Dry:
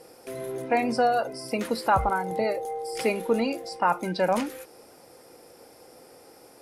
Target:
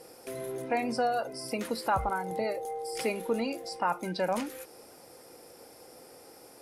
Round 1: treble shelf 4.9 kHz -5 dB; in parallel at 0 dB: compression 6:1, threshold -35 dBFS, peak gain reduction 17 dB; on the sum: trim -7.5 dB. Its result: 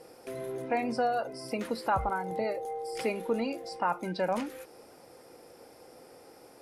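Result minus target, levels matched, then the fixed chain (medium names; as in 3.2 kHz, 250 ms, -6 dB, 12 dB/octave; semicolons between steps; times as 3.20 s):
8 kHz band -6.0 dB
treble shelf 4.9 kHz +3.5 dB; in parallel at 0 dB: compression 6:1, threshold -35 dBFS, peak gain reduction 17 dB; on the sum: trim -7.5 dB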